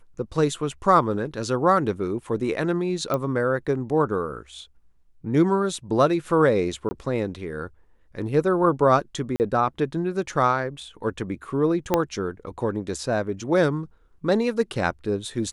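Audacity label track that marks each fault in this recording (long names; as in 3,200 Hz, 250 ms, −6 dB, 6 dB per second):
3.140000	3.140000	click −12 dBFS
6.890000	6.910000	drop-out 20 ms
9.360000	9.400000	drop-out 39 ms
11.940000	11.940000	click −6 dBFS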